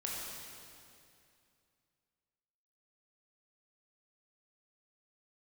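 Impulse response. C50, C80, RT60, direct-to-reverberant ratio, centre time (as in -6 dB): -1.5 dB, 0.0 dB, 2.5 s, -4.0 dB, 0.139 s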